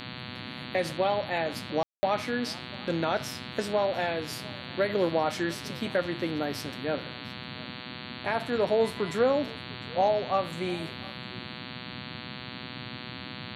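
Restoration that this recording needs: de-hum 124.6 Hz, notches 36; room tone fill 1.83–2.03; noise print and reduce 30 dB; inverse comb 0.704 s -22 dB

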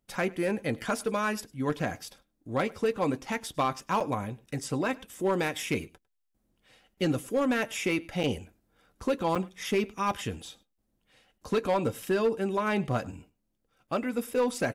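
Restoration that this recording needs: clip repair -19.5 dBFS; interpolate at 4/4.46/8.23/9.35/10.78/13.87, 6.2 ms; inverse comb 0.102 s -24 dB

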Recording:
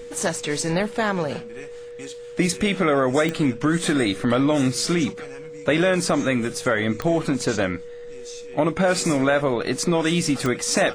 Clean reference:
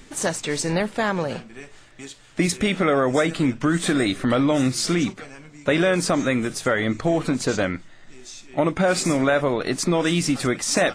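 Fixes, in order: de-click; notch 480 Hz, Q 30

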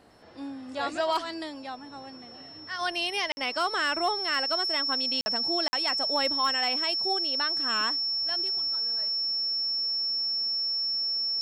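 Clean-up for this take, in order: clip repair -17.5 dBFS; notch 5400 Hz, Q 30; interpolate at 3.32/5.21/5.68, 50 ms

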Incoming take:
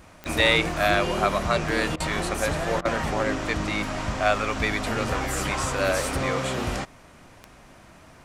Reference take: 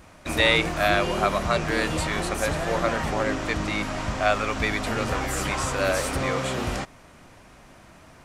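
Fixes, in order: clip repair -9 dBFS; de-click; interpolate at 1.96/2.81, 40 ms

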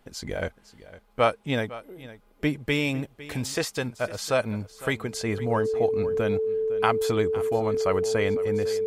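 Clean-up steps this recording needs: notch 440 Hz, Q 30; inverse comb 0.506 s -17 dB

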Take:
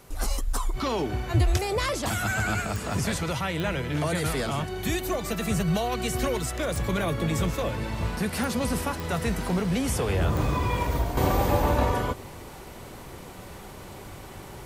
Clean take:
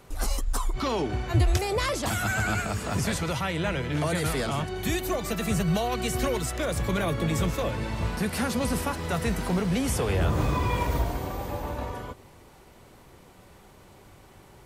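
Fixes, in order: de-click; expander -34 dBFS, range -21 dB; gain 0 dB, from 11.17 s -10 dB

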